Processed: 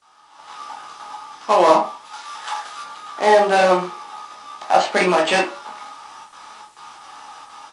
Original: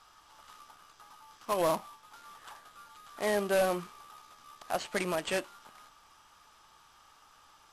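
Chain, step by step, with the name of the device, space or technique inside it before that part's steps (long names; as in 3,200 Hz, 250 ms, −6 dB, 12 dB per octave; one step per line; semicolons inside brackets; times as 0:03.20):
0:02.05–0:02.83: spectral tilt +2.5 dB per octave
noise gate with hold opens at −50 dBFS
filmed off a television (band-pass filter 270–6,100 Hz; parametric band 820 Hz +9 dB 0.23 octaves; convolution reverb RT60 0.30 s, pre-delay 11 ms, DRR −1.5 dB; white noise bed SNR 35 dB; automatic gain control gain up to 15.5 dB; AAC 96 kbit/s 22,050 Hz)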